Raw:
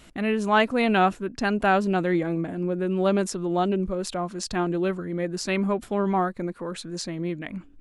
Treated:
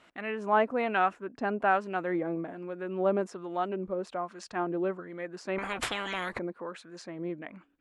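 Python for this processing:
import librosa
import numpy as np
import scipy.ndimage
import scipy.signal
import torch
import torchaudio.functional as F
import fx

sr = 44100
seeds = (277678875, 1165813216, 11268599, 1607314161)

y = fx.filter_lfo_bandpass(x, sr, shape='sine', hz=1.2, low_hz=610.0, high_hz=1500.0, q=0.71)
y = fx.dynamic_eq(y, sr, hz=3900.0, q=1.8, threshold_db=-52.0, ratio=4.0, max_db=-6)
y = fx.spectral_comp(y, sr, ratio=10.0, at=(5.58, 6.39))
y = y * 10.0 ** (-2.5 / 20.0)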